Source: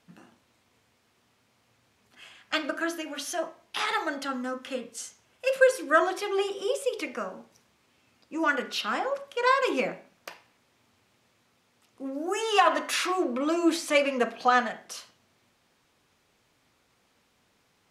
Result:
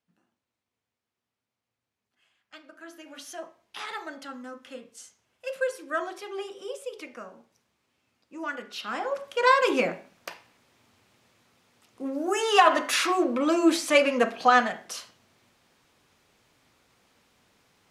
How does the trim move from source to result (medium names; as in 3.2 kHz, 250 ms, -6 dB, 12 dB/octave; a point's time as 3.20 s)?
2.68 s -20 dB
3.13 s -8 dB
8.69 s -8 dB
9.26 s +3 dB